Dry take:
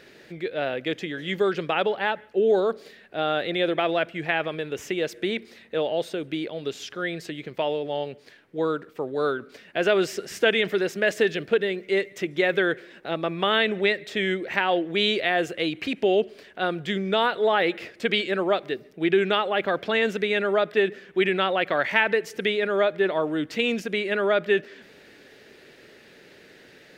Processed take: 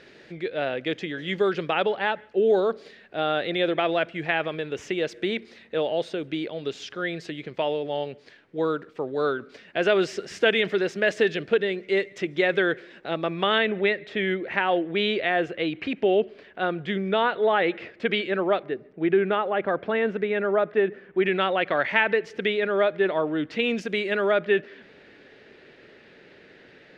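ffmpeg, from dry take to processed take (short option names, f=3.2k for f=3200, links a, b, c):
-af "asetnsamples=n=441:p=0,asendcmd='13.58 lowpass f 2900;18.63 lowpass f 1700;21.26 lowpass f 3700;23.77 lowpass f 6700;24.31 lowpass f 3400',lowpass=5.8k"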